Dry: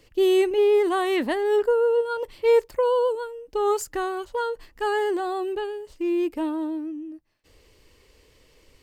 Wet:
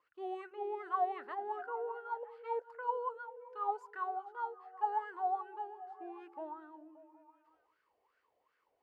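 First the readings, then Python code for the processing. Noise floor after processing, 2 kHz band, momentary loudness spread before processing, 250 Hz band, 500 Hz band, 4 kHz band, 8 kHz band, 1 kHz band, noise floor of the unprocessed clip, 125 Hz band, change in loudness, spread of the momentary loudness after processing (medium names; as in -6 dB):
-80 dBFS, -16.0 dB, 11 LU, -26.0 dB, -22.0 dB, under -25 dB, under -35 dB, -6.5 dB, -58 dBFS, no reading, -16.0 dB, 12 LU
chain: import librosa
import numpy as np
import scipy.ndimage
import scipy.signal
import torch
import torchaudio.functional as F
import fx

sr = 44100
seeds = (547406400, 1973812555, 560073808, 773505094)

y = fx.wah_lfo(x, sr, hz=2.6, low_hz=690.0, high_hz=1500.0, q=12.0)
y = fx.echo_stepped(y, sr, ms=192, hz=220.0, octaves=0.7, feedback_pct=70, wet_db=-8)
y = F.gain(torch.from_numpy(y), 1.5).numpy()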